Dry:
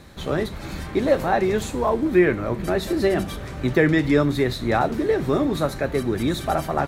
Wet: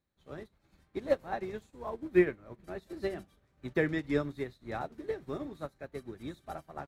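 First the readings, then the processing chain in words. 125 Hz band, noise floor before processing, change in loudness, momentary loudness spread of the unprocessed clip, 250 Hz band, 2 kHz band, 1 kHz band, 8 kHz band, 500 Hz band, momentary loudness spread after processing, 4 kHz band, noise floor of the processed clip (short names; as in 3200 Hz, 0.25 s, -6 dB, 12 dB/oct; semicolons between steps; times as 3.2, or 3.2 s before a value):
-17.0 dB, -35 dBFS, -13.0 dB, 8 LU, -14.0 dB, -13.0 dB, -17.0 dB, under -20 dB, -13.0 dB, 17 LU, -19.5 dB, -73 dBFS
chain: upward expander 2.5:1, over -34 dBFS; gain -6 dB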